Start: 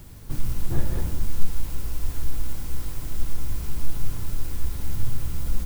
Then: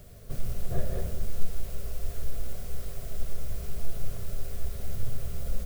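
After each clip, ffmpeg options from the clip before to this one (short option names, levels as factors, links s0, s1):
-af "superequalizer=6b=0.355:7b=2.24:8b=3.16:9b=0.447,volume=0.531"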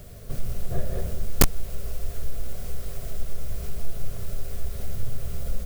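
-filter_complex "[0:a]asplit=2[s0][s1];[s1]acompressor=threshold=0.0282:ratio=10,volume=0.944[s2];[s0][s2]amix=inputs=2:normalize=0,aeval=exprs='(mod(3.35*val(0)+1,2)-1)/3.35':c=same"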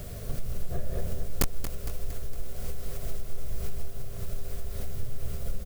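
-filter_complex "[0:a]acompressor=threshold=0.0282:ratio=3,asplit=2[s0][s1];[s1]aecho=0:1:230|460|690|920|1150|1380:0.282|0.155|0.0853|0.0469|0.0258|0.0142[s2];[s0][s2]amix=inputs=2:normalize=0,volume=1.68"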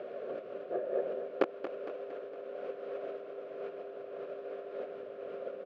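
-af "highpass=f=330:w=0.5412,highpass=f=330:w=1.3066,equalizer=f=350:t=q:w=4:g=7,equalizer=f=550:t=q:w=4:g=8,equalizer=f=970:t=q:w=4:g=-5,equalizer=f=2000:t=q:w=4:g=-9,lowpass=f=2300:w=0.5412,lowpass=f=2300:w=1.3066,volume=1.41"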